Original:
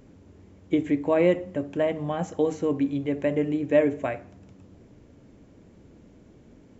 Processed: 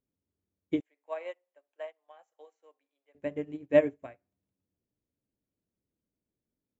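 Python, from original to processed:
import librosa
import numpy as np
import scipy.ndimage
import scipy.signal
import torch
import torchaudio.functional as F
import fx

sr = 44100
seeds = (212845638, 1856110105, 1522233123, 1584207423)

y = fx.highpass(x, sr, hz=580.0, slope=24, at=(0.8, 3.15))
y = fx.upward_expand(y, sr, threshold_db=-40.0, expansion=2.5)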